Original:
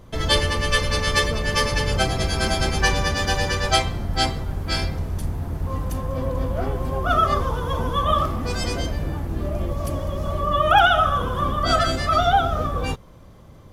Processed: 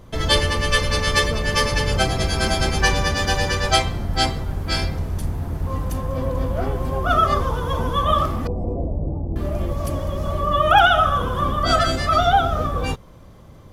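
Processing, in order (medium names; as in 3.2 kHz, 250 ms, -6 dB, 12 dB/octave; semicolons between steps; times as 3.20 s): 8.47–9.36 s: inverse Chebyshev low-pass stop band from 1.5 kHz, stop band 40 dB; trim +1.5 dB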